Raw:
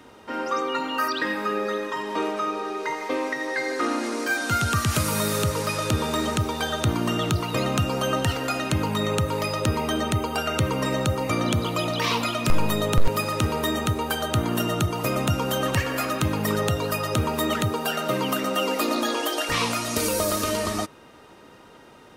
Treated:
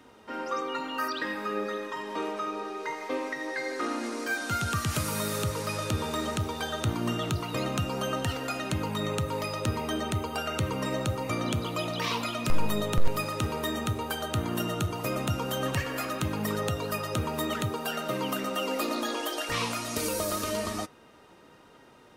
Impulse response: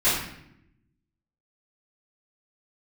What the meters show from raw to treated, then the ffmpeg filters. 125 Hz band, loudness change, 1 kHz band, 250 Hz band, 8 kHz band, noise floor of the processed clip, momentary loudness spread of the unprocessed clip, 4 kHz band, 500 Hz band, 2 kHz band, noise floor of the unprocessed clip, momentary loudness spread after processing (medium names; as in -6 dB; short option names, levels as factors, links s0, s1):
-6.0 dB, -6.0 dB, -6.0 dB, -6.0 dB, -6.0 dB, -55 dBFS, 3 LU, -6.0 dB, -6.0 dB, -6.0 dB, -49 dBFS, 3 LU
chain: -af "flanger=delay=3.8:depth=7.7:regen=86:speed=0.24:shape=triangular,volume=0.841"